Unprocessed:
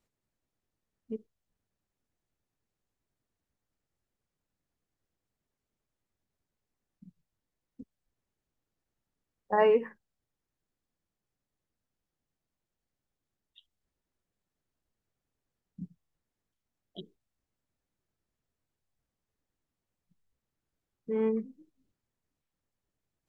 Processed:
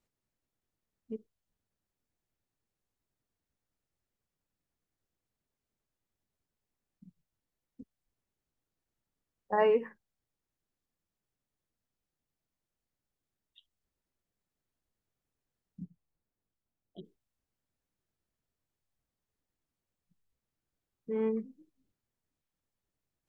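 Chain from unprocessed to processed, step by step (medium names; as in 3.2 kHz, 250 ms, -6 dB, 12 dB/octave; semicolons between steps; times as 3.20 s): 15.83–17.03 s: low-pass 1.4 kHz -> 1 kHz 6 dB/octave; trim -2.5 dB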